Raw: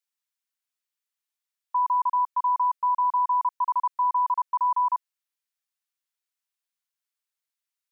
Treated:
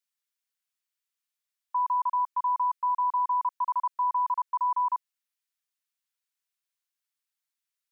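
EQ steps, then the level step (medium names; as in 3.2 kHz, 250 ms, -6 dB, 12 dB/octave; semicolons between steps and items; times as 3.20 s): high-pass 1 kHz 12 dB/octave; 0.0 dB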